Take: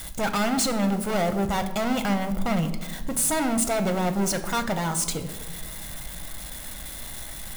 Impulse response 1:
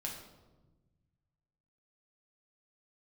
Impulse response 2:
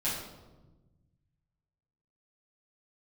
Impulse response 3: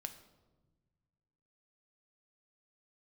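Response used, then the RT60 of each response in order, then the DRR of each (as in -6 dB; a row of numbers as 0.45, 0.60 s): 3; 1.2, 1.2, 1.3 s; -2.0, -11.0, 7.0 dB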